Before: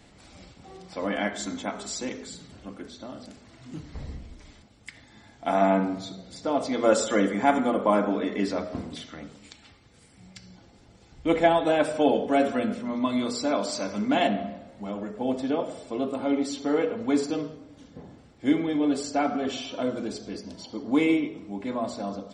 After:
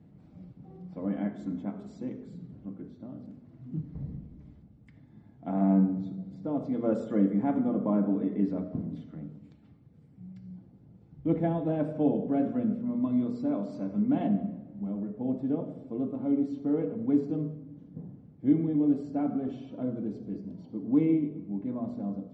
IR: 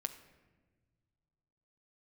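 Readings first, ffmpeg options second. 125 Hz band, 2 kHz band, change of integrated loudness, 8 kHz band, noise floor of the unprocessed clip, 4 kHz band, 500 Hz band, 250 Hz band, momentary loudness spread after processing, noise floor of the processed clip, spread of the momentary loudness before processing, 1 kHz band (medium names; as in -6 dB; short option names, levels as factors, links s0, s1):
+4.5 dB, under -15 dB, -3.5 dB, under -30 dB, -55 dBFS, under -25 dB, -8.5 dB, 0.0 dB, 19 LU, -56 dBFS, 18 LU, -13.5 dB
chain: -filter_complex "[0:a]bandpass=f=160:t=q:w=1.9:csg=0,asplit=2[s0][s1];[1:a]atrim=start_sample=2205[s2];[s1][s2]afir=irnorm=-1:irlink=0,volume=1.19[s3];[s0][s3]amix=inputs=2:normalize=0"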